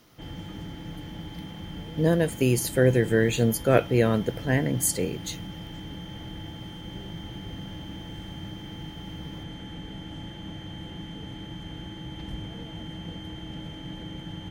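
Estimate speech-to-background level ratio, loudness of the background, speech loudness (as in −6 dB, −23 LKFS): 15.0 dB, −39.0 LKFS, −24.0 LKFS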